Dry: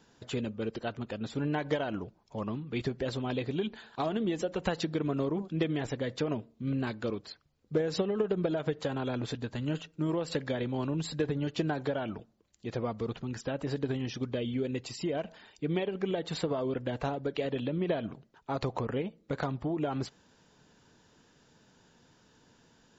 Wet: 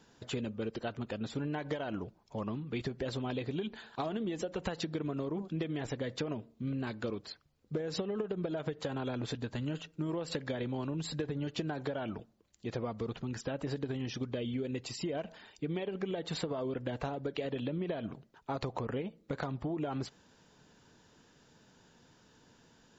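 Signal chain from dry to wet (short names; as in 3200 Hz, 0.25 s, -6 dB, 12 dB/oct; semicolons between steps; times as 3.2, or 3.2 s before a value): compressor, threshold -32 dBFS, peak gain reduction 9 dB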